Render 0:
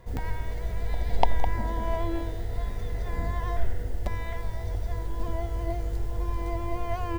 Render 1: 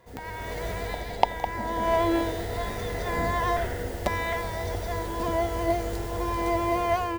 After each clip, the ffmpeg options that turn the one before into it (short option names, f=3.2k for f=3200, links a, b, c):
-af "highpass=f=310:p=1,dynaudnorm=f=170:g=5:m=12dB,volume=-1dB"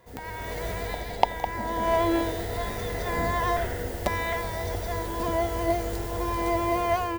-af "highshelf=f=11k:g=5.5"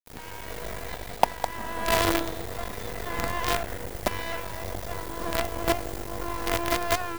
-filter_complex "[0:a]acrossover=split=300|7400[a][b][c];[c]acompressor=mode=upward:threshold=-49dB:ratio=2.5[d];[a][b][d]amix=inputs=3:normalize=0,acrusher=bits=4:dc=4:mix=0:aa=0.000001"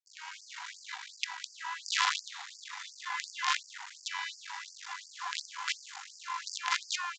-af "aresample=16000,aresample=44100,afftfilt=real='re*gte(b*sr/1024,730*pow(4600/730,0.5+0.5*sin(2*PI*2.8*pts/sr)))':imag='im*gte(b*sr/1024,730*pow(4600/730,0.5+0.5*sin(2*PI*2.8*pts/sr)))':win_size=1024:overlap=0.75"